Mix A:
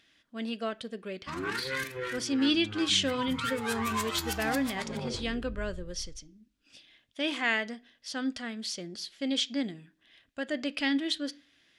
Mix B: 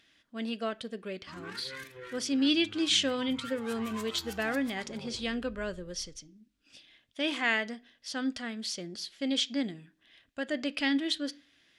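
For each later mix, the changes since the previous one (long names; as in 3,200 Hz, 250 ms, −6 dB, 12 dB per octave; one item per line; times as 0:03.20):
background −10.0 dB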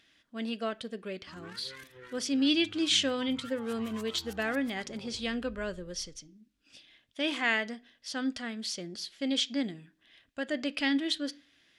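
background: send off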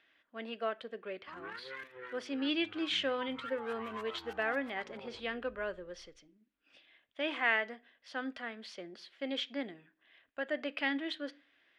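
background +5.0 dB
master: add three-way crossover with the lows and the highs turned down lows −16 dB, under 360 Hz, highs −23 dB, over 2,900 Hz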